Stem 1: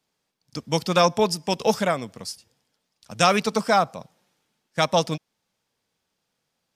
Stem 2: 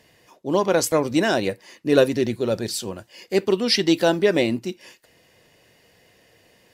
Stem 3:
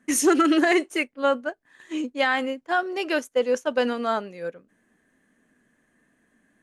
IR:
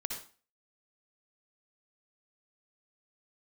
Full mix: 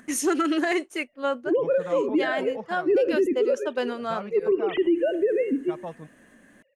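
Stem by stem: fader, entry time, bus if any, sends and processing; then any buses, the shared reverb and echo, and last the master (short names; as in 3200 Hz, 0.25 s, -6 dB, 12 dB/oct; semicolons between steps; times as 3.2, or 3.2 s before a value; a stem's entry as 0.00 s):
-15.5 dB, 0.90 s, no send, LPF 1300 Hz 12 dB/oct
-2.5 dB, 1.00 s, send -12 dB, sine-wave speech; tilt -2.5 dB/oct; rotary speaker horn 0.75 Hz
-4.5 dB, 0.00 s, no send, upward compressor, threshold -36 dBFS; hard clip -11 dBFS, distortion -40 dB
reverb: on, RT60 0.40 s, pre-delay 53 ms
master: limiter -15 dBFS, peak gain reduction 10 dB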